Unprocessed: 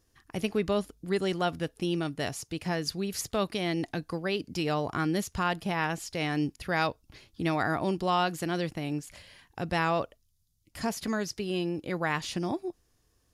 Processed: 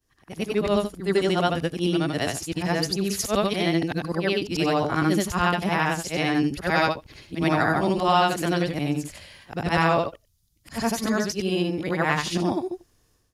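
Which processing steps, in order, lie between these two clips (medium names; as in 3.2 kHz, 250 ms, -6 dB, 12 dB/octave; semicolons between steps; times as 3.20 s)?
short-time spectra conjugated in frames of 194 ms; level rider gain up to 10 dB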